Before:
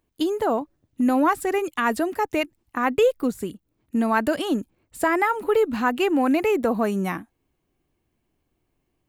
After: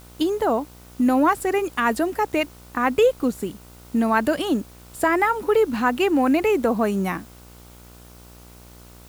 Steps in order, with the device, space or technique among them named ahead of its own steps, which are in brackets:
video cassette with head-switching buzz (hum with harmonics 60 Hz, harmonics 25, −48 dBFS −5 dB per octave; white noise bed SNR 29 dB)
level +1.5 dB

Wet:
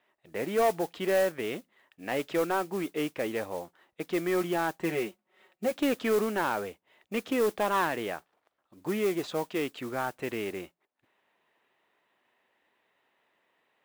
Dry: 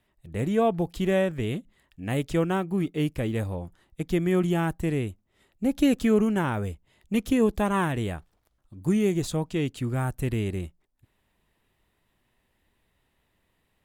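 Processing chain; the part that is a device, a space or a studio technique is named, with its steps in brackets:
0:04.80–0:05.76: comb filter 5.4 ms, depth 79%
carbon microphone (band-pass filter 460–2,800 Hz; soft clipping −23 dBFS, distortion −14 dB; noise that follows the level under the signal 18 dB)
level +4 dB

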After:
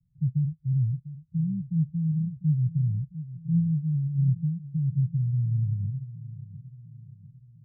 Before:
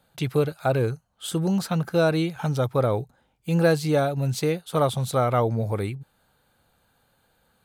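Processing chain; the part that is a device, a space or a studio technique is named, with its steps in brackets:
inverse Chebyshev band-stop filter 330–730 Hz, stop band 60 dB
tape delay 700 ms, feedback 68%, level −11.5 dB
the neighbour's flat through the wall (low-pass filter 250 Hz 24 dB per octave; parametric band 160 Hz +4.5 dB 0.93 octaves)

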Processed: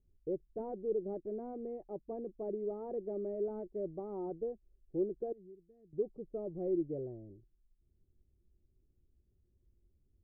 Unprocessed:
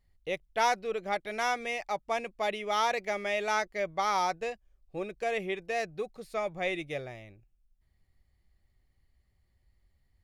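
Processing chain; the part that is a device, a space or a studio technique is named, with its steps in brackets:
0:05.32–0:05.93: guitar amp tone stack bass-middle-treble 6-0-2
overdriven synthesiser ladder filter (soft clipping −22.5 dBFS, distortion −17 dB; transistor ladder low-pass 420 Hz, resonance 55%)
level +7.5 dB

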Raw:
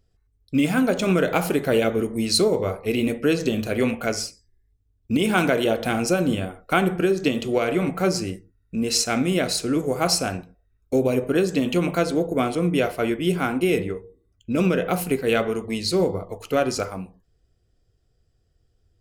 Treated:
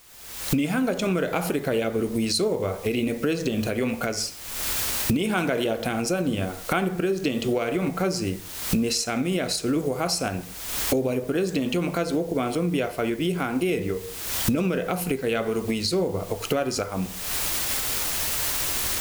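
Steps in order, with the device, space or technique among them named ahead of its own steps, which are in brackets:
cheap recorder with automatic gain (white noise bed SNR 26 dB; camcorder AGC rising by 50 dB per second)
level −5 dB

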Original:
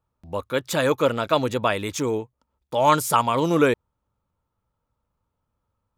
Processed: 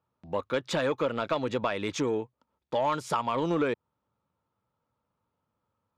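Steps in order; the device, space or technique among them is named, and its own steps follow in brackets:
AM radio (band-pass filter 130–4,400 Hz; downward compressor 6 to 1, threshold −23 dBFS, peak gain reduction 11 dB; soft clipping −16.5 dBFS, distortion −21 dB)

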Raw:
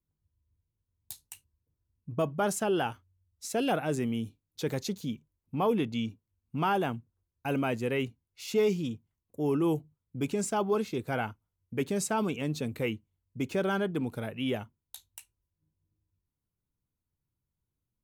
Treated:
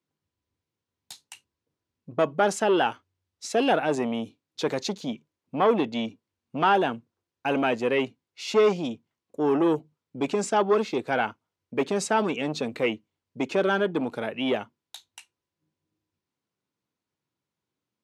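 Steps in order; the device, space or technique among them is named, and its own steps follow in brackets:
public-address speaker with an overloaded transformer (saturating transformer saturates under 540 Hz; band-pass filter 270–5,500 Hz)
level +8.5 dB

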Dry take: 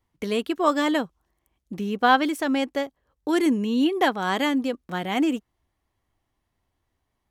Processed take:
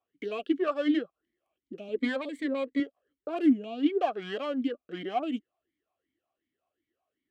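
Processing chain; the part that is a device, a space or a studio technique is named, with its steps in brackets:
talk box (tube saturation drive 23 dB, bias 0.45; formant filter swept between two vowels a-i 2.7 Hz)
0:01.88–0:02.80: EQ curve with evenly spaced ripples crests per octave 1, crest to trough 12 dB
level +8 dB

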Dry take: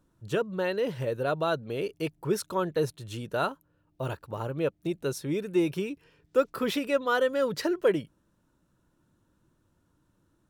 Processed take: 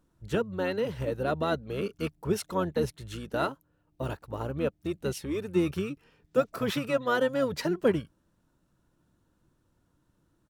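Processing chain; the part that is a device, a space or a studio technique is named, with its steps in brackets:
octave pedal (pitch-shifted copies added −12 semitones −7 dB)
level −1.5 dB

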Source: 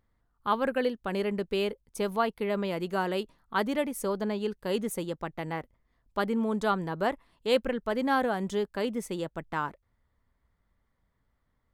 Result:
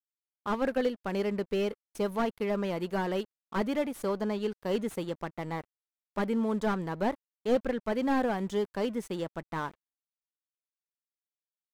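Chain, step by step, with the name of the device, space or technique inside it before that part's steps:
early transistor amplifier (dead-zone distortion −51 dBFS; slew-rate limiting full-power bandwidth 45 Hz)

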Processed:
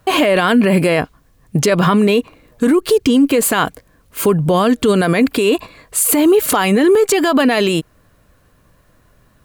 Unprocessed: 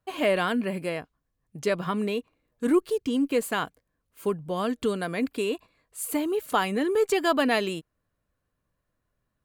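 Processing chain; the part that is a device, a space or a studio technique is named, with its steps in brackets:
loud club master (downward compressor 2.5 to 1, threshold −28 dBFS, peak gain reduction 8.5 dB; hard clipping −18.5 dBFS, distortion −40 dB; boost into a limiter +30 dB)
level −4.5 dB

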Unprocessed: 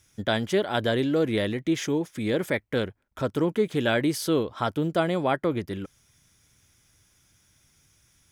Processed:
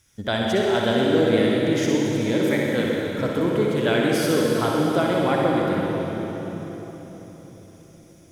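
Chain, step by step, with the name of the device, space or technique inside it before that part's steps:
tunnel (flutter between parallel walls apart 10.7 metres, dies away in 0.56 s; convolution reverb RT60 4.3 s, pre-delay 54 ms, DRR −1 dB)

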